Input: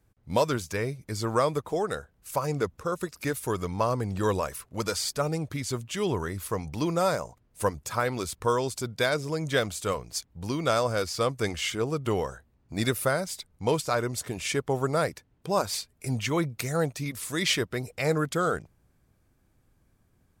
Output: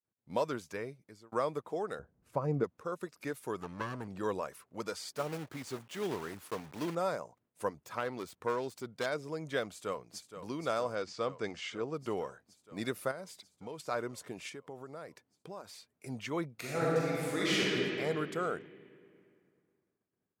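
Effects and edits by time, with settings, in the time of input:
0.74–1.32 fade out
1.99–2.64 tilt -4 dB/oct
3.6–4.08 minimum comb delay 0.7 ms
5.16–6.96 block floating point 3-bit
7.7–9.06 self-modulated delay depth 0.14 ms
9.66–10.28 echo throw 0.47 s, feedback 80%, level -10.5 dB
10.95–11.94 LPF 7200 Hz 24 dB/oct
13.11–13.8 compressor, threshold -31 dBFS
14.49–15.92 compressor 5:1, threshold -34 dBFS
16.53–17.62 reverb throw, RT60 2.8 s, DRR -7.5 dB
whole clip: expander -57 dBFS; HPF 190 Hz 12 dB/oct; high shelf 3600 Hz -9 dB; gain -7.5 dB

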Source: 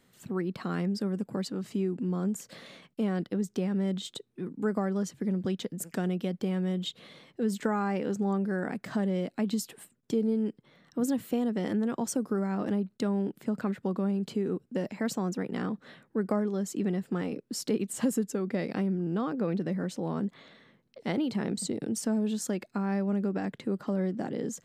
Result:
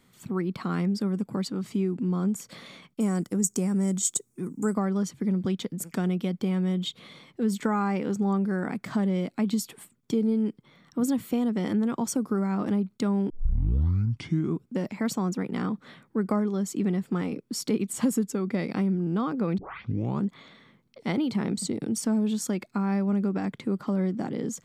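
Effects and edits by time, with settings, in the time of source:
3–4.74 resonant high shelf 5200 Hz +12.5 dB, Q 3
13.3 tape start 1.36 s
19.58 tape start 0.66 s
whole clip: comb 0.9 ms, depth 32%; gain +2.5 dB

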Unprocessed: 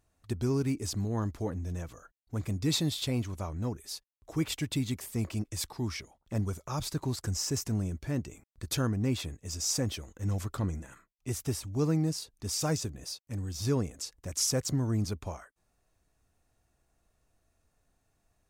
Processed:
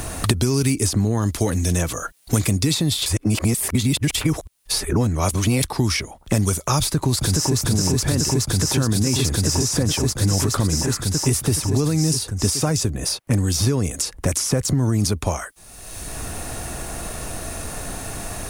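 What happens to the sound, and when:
3.06–5.63 reverse
6.79–7.6 echo throw 0.42 s, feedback 85%, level -0.5 dB
whole clip: bell 9800 Hz +9 dB 0.28 oct; maximiser +25 dB; three-band squash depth 100%; gain -10.5 dB

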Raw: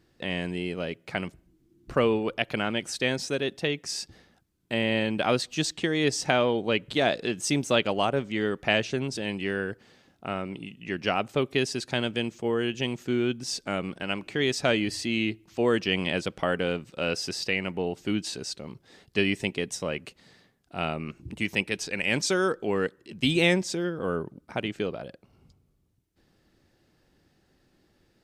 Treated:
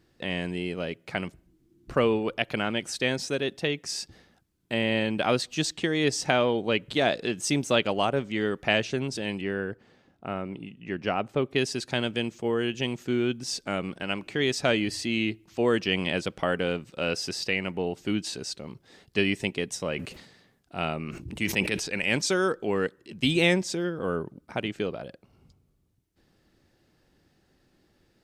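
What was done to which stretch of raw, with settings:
9.41–11.56 high shelf 2800 Hz -11 dB
19.79–22.16 sustainer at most 72 dB/s

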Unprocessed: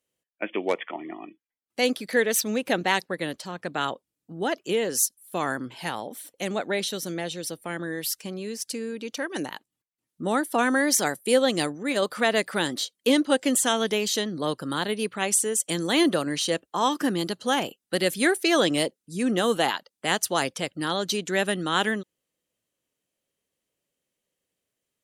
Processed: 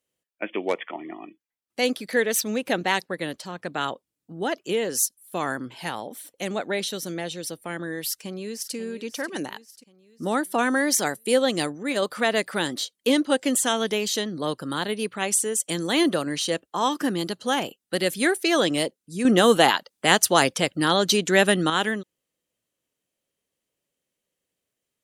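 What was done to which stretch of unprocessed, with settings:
8.07–8.75 echo throw 0.54 s, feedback 50%, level -12 dB
19.25–21.7 gain +6.5 dB

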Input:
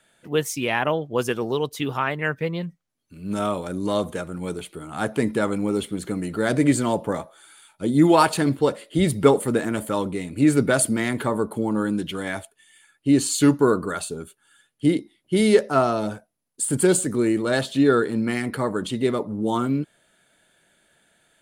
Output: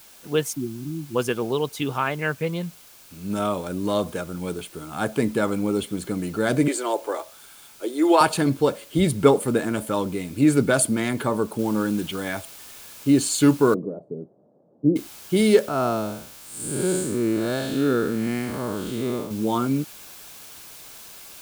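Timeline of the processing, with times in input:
0.53–1.15 spectral delete 370–11000 Hz
6.68–8.21 elliptic high-pass 340 Hz, stop band 80 dB
11.59 noise floor step -49 dB -43 dB
13.74–14.96 elliptic band-pass 130–610 Hz, stop band 60 dB
15.68–19.31 time blur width 0.195 s
whole clip: notch 1900 Hz, Q 10

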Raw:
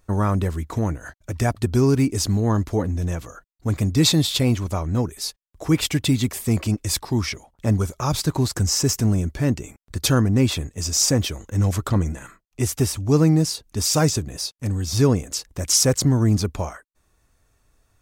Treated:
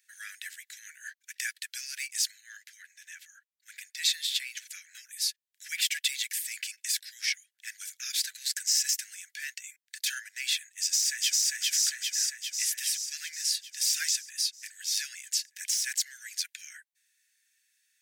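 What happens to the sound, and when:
2.31–4.57 high shelf 2100 Hz -7 dB
10.65–11.42 echo throw 0.4 s, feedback 65%, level -1 dB
whole clip: de-esser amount 40%; steep high-pass 1600 Hz 96 dB/oct

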